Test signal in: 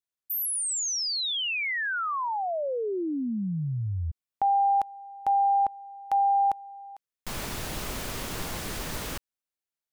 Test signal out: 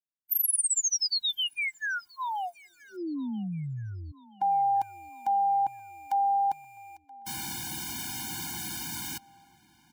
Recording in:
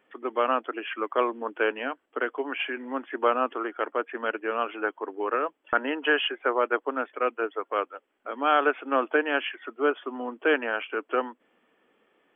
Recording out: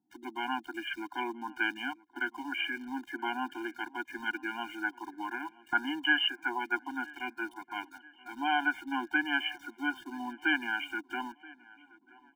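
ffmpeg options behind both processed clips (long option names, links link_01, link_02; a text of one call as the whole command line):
ffmpeg -i in.wav -filter_complex "[0:a]highpass=120,highshelf=frequency=3100:gain=9.5,acrossover=split=630[link_01][link_02];[link_02]aeval=exprs='val(0)*gte(abs(val(0)),0.00531)':channel_layout=same[link_03];[link_01][link_03]amix=inputs=2:normalize=0,asplit=2[link_04][link_05];[link_05]adelay=977,lowpass=frequency=3100:poles=1,volume=-22dB,asplit=2[link_06][link_07];[link_07]adelay=977,lowpass=frequency=3100:poles=1,volume=0.54,asplit=2[link_08][link_09];[link_09]adelay=977,lowpass=frequency=3100:poles=1,volume=0.54,asplit=2[link_10][link_11];[link_11]adelay=977,lowpass=frequency=3100:poles=1,volume=0.54[link_12];[link_04][link_06][link_08][link_10][link_12]amix=inputs=5:normalize=0,afftfilt=real='re*eq(mod(floor(b*sr/1024/350),2),0)':imag='im*eq(mod(floor(b*sr/1024/350),2),0)':win_size=1024:overlap=0.75,volume=-3dB" out.wav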